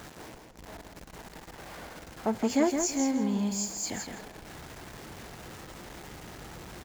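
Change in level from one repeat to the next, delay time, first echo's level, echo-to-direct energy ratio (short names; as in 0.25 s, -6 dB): -15.0 dB, 0.165 s, -6.0 dB, -6.0 dB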